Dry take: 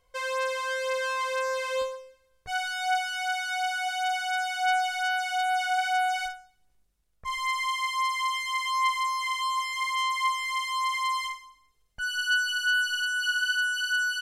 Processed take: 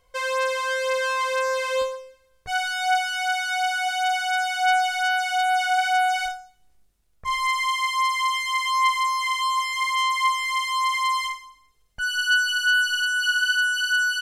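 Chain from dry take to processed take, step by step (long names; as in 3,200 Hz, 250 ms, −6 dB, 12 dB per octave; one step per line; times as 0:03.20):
0:06.25–0:07.47: flutter between parallel walls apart 4.9 metres, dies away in 0.2 s
level +5 dB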